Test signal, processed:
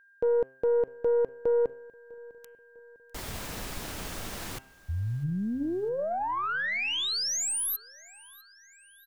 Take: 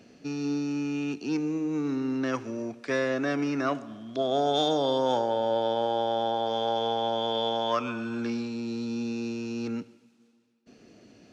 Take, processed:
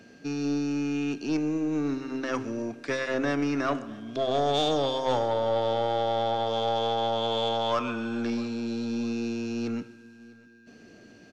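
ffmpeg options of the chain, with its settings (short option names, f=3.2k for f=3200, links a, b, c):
-filter_complex "[0:a]bandreject=f=131.9:t=h:w=4,bandreject=f=263.8:t=h:w=4,bandreject=f=395.7:t=h:w=4,bandreject=f=527.6:t=h:w=4,bandreject=f=659.5:t=h:w=4,bandreject=f=791.4:t=h:w=4,bandreject=f=923.3:t=h:w=4,bandreject=f=1.0552k:t=h:w=4,bandreject=f=1.1871k:t=h:w=4,bandreject=f=1.319k:t=h:w=4,bandreject=f=1.4509k:t=h:w=4,bandreject=f=1.5828k:t=h:w=4,bandreject=f=1.7147k:t=h:w=4,bandreject=f=1.8466k:t=h:w=4,bandreject=f=1.9785k:t=h:w=4,bandreject=f=2.1104k:t=h:w=4,bandreject=f=2.2423k:t=h:w=4,bandreject=f=2.3742k:t=h:w=4,bandreject=f=2.5061k:t=h:w=4,bandreject=f=2.638k:t=h:w=4,bandreject=f=2.7699k:t=h:w=4,bandreject=f=2.9018k:t=h:w=4,bandreject=f=3.0337k:t=h:w=4,bandreject=f=3.1656k:t=h:w=4,aeval=exprs='(tanh(8.91*val(0)+0.3)-tanh(0.3))/8.91':c=same,aeval=exprs='val(0)+0.001*sin(2*PI*1600*n/s)':c=same,asplit=2[a][b];[b]aecho=0:1:651|1302|1953:0.0708|0.0354|0.0177[c];[a][c]amix=inputs=2:normalize=0,volume=2.5dB"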